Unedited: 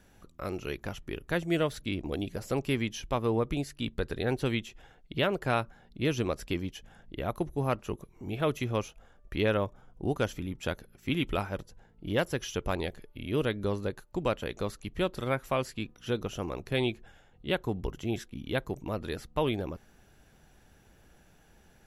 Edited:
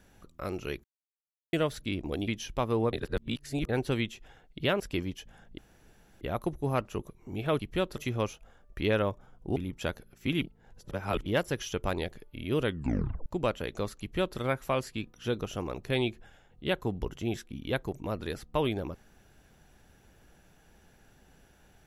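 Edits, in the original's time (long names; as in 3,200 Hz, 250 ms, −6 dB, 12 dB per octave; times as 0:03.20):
0:00.84–0:01.53: silence
0:02.28–0:02.82: remove
0:03.47–0:04.23: reverse
0:05.34–0:06.37: remove
0:07.15: splice in room tone 0.63 s
0:10.11–0:10.38: remove
0:11.24–0:12.08: reverse
0:13.47: tape stop 0.61 s
0:14.82–0:15.21: duplicate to 0:08.53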